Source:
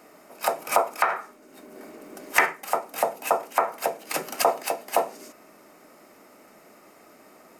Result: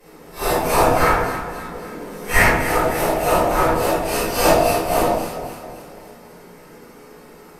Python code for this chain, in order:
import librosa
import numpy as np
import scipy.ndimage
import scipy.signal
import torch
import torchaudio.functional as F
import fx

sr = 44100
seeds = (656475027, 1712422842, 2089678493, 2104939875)

p1 = fx.phase_scramble(x, sr, seeds[0], window_ms=200)
p2 = fx.peak_eq(p1, sr, hz=130.0, db=-13.0, octaves=0.51)
p3 = fx.sample_hold(p2, sr, seeds[1], rate_hz=1100.0, jitter_pct=20)
p4 = p2 + (p3 * librosa.db_to_amplitude(-8.5))
p5 = fx.echo_alternate(p4, sr, ms=136, hz=1000.0, feedback_pct=70, wet_db=-7.5)
p6 = fx.pitch_keep_formants(p5, sr, semitones=-6.0)
p7 = fx.room_shoebox(p6, sr, seeds[2], volume_m3=77.0, walls='mixed', distance_m=3.6)
y = p7 * librosa.db_to_amplitude(-5.0)